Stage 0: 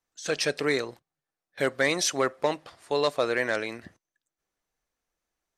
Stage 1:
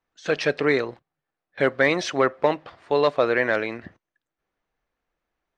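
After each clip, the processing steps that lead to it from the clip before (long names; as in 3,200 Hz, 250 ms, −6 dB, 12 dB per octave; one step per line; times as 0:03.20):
low-pass filter 2,800 Hz 12 dB per octave
level +5.5 dB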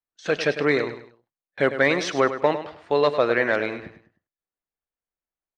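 noise gate −52 dBFS, range −18 dB
on a send: repeating echo 102 ms, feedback 32%, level −11 dB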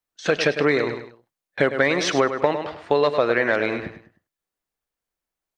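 downward compressor 4 to 1, threshold −23 dBFS, peak gain reduction 8 dB
level +7 dB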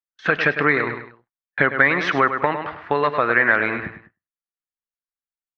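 noise gate with hold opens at −39 dBFS
drawn EQ curve 190 Hz 0 dB, 560 Hz −6 dB, 1,200 Hz +6 dB, 1,800 Hz +6 dB, 5,600 Hz −15 dB, 9,500 Hz −28 dB
level +1.5 dB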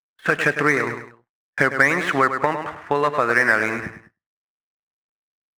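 running median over 9 samples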